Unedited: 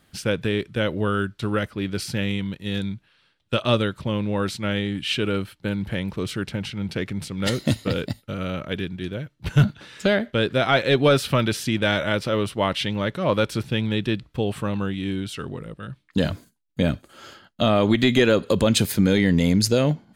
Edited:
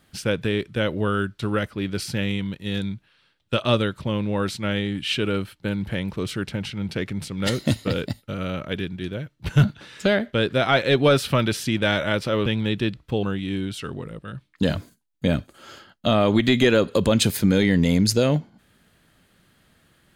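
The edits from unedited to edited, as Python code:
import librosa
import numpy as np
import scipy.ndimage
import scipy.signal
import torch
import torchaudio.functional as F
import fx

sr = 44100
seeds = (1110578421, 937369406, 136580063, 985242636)

y = fx.edit(x, sr, fx.cut(start_s=12.46, length_s=1.26),
    fx.cut(start_s=14.49, length_s=0.29), tone=tone)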